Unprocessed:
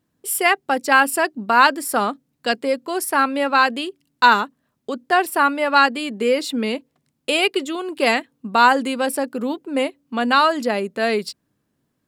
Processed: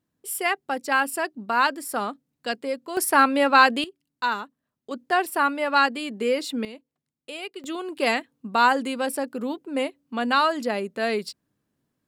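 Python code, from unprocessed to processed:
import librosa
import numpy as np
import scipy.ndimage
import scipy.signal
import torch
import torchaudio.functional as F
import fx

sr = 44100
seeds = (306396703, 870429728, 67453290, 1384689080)

y = fx.gain(x, sr, db=fx.steps((0.0, -7.5), (2.97, 0.5), (3.84, -12.0), (4.91, -5.0), (6.65, -17.0), (7.64, -5.0)))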